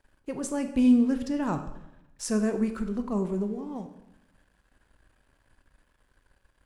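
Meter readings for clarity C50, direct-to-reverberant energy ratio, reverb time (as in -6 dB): 10.0 dB, 7.0 dB, 0.85 s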